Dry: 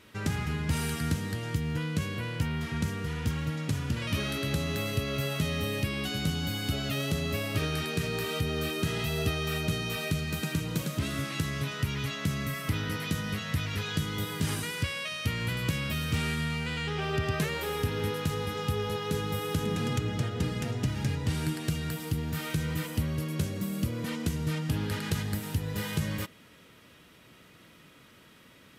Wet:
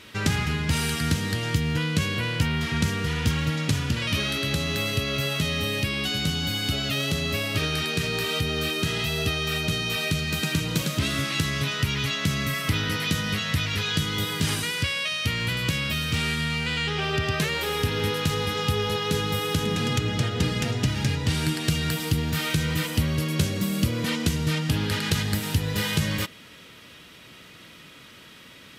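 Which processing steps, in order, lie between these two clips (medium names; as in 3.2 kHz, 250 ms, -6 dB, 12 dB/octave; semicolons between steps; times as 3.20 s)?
peaking EQ 3.8 kHz +6.5 dB 2.1 oct; gain riding; trim +4 dB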